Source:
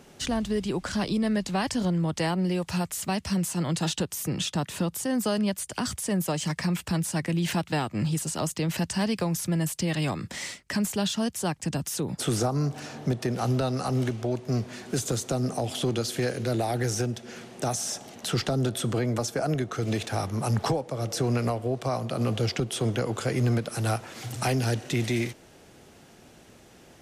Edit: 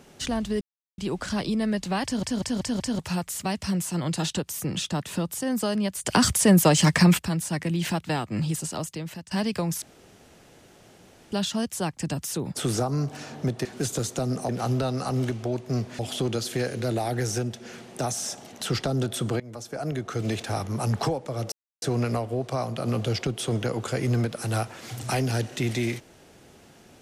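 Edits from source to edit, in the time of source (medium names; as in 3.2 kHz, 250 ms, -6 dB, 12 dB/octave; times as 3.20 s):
0.61 s: insert silence 0.37 s
1.67 s: stutter in place 0.19 s, 5 plays
5.68–6.82 s: gain +10 dB
8.21–8.94 s: fade out, to -18.5 dB
9.45–10.95 s: room tone
14.78–15.62 s: move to 13.28 s
19.03–19.76 s: fade in, from -21 dB
21.15 s: insert silence 0.30 s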